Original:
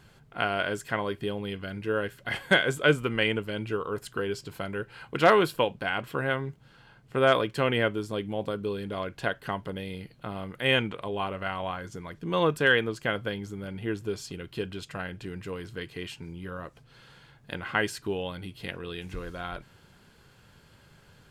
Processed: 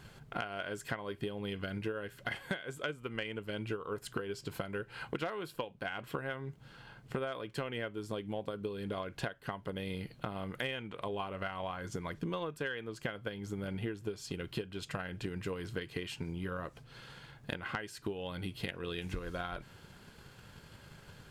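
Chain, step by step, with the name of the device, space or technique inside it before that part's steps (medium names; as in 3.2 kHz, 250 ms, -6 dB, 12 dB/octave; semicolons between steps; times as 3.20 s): drum-bus smash (transient shaper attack +7 dB, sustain 0 dB; compression 16:1, threshold -35 dBFS, peak gain reduction 26 dB; saturation -22.5 dBFS, distortion -25 dB); trim +1.5 dB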